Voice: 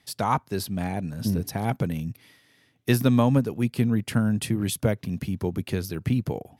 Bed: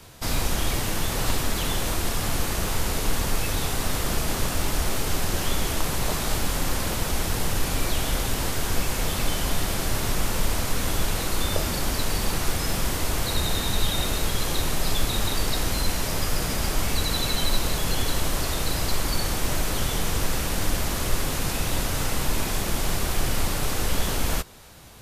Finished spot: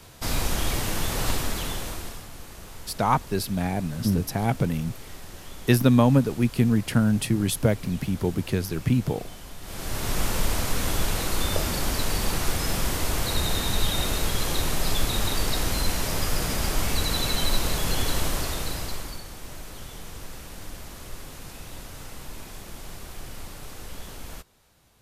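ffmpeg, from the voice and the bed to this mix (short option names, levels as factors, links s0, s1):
-filter_complex "[0:a]adelay=2800,volume=1.26[s0];[1:a]volume=5.62,afade=t=out:st=1.29:d=0.98:silence=0.16788,afade=t=in:st=9.61:d=0.6:silence=0.158489,afade=t=out:st=18.22:d=1.01:silence=0.199526[s1];[s0][s1]amix=inputs=2:normalize=0"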